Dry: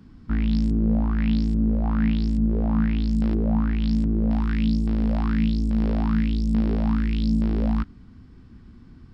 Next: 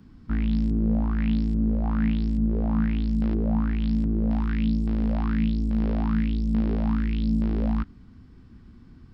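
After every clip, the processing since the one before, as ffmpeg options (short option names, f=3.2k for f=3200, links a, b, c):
-filter_complex "[0:a]acrossover=split=4000[a][b];[b]acompressor=threshold=-55dB:ratio=4:attack=1:release=60[c];[a][c]amix=inputs=2:normalize=0,volume=-2dB"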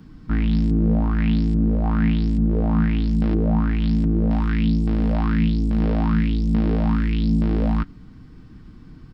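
-af "aecho=1:1:6.5:0.4,volume=6dB"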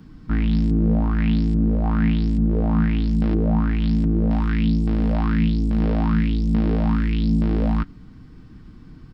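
-af anull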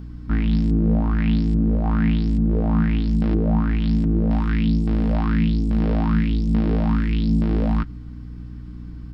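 -af "aeval=exprs='val(0)+0.02*(sin(2*PI*60*n/s)+sin(2*PI*2*60*n/s)/2+sin(2*PI*3*60*n/s)/3+sin(2*PI*4*60*n/s)/4+sin(2*PI*5*60*n/s)/5)':c=same"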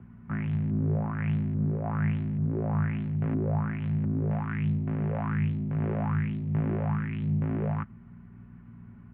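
-af "highpass=f=170:t=q:w=0.5412,highpass=f=170:t=q:w=1.307,lowpass=f=2.5k:t=q:w=0.5176,lowpass=f=2.5k:t=q:w=0.7071,lowpass=f=2.5k:t=q:w=1.932,afreqshift=-69,volume=-5dB"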